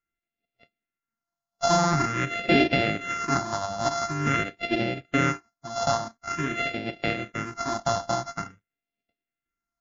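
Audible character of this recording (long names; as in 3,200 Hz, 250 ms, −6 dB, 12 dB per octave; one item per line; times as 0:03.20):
a buzz of ramps at a fixed pitch in blocks of 64 samples
phaser sweep stages 4, 0.47 Hz, lowest notch 390–1,100 Hz
MP3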